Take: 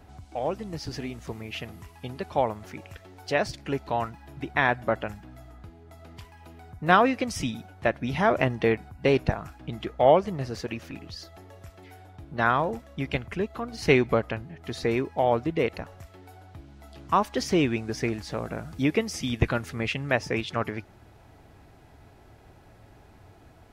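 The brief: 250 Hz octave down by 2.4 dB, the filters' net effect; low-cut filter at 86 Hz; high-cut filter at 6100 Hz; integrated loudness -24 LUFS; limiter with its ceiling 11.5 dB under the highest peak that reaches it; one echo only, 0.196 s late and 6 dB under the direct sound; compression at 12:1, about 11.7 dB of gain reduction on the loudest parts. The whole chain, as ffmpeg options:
-af "highpass=86,lowpass=6.1k,equalizer=f=250:t=o:g=-3,acompressor=threshold=-25dB:ratio=12,alimiter=limit=-22dB:level=0:latency=1,aecho=1:1:196:0.501,volume=11dB"

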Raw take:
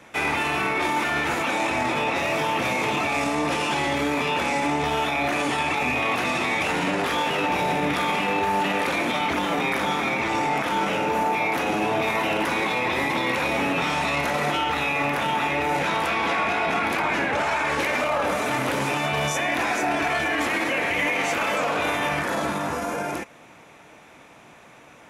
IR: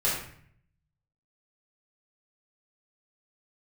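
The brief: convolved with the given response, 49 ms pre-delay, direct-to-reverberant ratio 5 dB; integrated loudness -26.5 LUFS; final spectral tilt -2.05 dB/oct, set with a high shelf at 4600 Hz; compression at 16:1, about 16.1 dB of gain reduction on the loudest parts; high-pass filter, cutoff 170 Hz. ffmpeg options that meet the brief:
-filter_complex "[0:a]highpass=170,highshelf=f=4.6k:g=-6,acompressor=threshold=-37dB:ratio=16,asplit=2[a][b];[1:a]atrim=start_sample=2205,adelay=49[c];[b][c]afir=irnorm=-1:irlink=0,volume=-16dB[d];[a][d]amix=inputs=2:normalize=0,volume=12.5dB"

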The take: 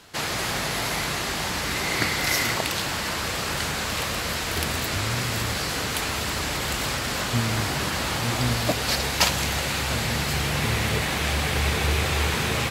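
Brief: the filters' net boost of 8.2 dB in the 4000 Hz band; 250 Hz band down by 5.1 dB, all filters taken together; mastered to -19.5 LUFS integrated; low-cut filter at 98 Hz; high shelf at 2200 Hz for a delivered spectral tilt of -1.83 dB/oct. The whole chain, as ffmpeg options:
-af "highpass=98,equalizer=f=250:t=o:g=-7,highshelf=f=2.2k:g=6,equalizer=f=4k:t=o:g=4.5"

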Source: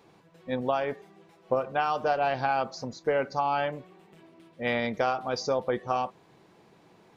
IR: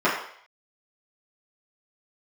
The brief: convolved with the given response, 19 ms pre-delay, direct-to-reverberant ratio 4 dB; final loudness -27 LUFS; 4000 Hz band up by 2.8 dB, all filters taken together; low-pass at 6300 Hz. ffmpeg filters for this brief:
-filter_complex "[0:a]lowpass=6.3k,equalizer=f=4k:t=o:g=4.5,asplit=2[a][b];[1:a]atrim=start_sample=2205,adelay=19[c];[b][c]afir=irnorm=-1:irlink=0,volume=-22.5dB[d];[a][d]amix=inputs=2:normalize=0,volume=0.5dB"

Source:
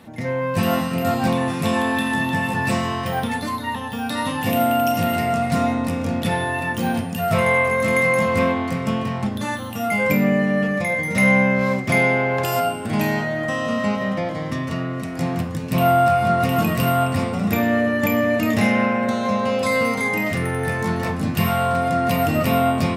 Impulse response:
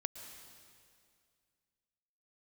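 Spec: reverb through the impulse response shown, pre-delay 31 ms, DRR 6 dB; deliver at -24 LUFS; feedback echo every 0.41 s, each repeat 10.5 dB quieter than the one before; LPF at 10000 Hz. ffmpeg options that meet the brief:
-filter_complex "[0:a]lowpass=10k,aecho=1:1:410|820|1230:0.299|0.0896|0.0269,asplit=2[a][b];[1:a]atrim=start_sample=2205,adelay=31[c];[b][c]afir=irnorm=-1:irlink=0,volume=-5dB[d];[a][d]amix=inputs=2:normalize=0,volume=-5.5dB"

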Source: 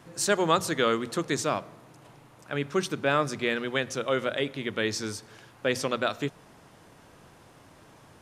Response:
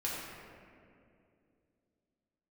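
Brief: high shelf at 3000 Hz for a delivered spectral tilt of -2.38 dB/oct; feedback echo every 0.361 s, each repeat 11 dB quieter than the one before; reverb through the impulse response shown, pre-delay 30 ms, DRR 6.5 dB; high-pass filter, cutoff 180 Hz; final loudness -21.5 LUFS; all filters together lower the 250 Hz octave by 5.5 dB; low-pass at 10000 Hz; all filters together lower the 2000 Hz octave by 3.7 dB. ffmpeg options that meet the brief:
-filter_complex "[0:a]highpass=180,lowpass=10k,equalizer=f=250:t=o:g=-6.5,equalizer=f=2k:t=o:g=-6.5,highshelf=f=3k:g=4.5,aecho=1:1:361|722|1083:0.282|0.0789|0.0221,asplit=2[a][b];[1:a]atrim=start_sample=2205,adelay=30[c];[b][c]afir=irnorm=-1:irlink=0,volume=-11dB[d];[a][d]amix=inputs=2:normalize=0,volume=7.5dB"

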